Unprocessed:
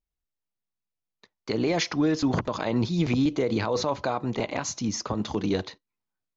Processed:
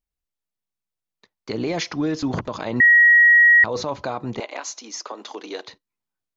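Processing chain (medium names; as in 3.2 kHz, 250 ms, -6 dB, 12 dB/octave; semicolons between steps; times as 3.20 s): 2.80–3.64 s: bleep 1.9 kHz -9 dBFS; 4.40–5.68 s: Bessel high-pass 520 Hz, order 8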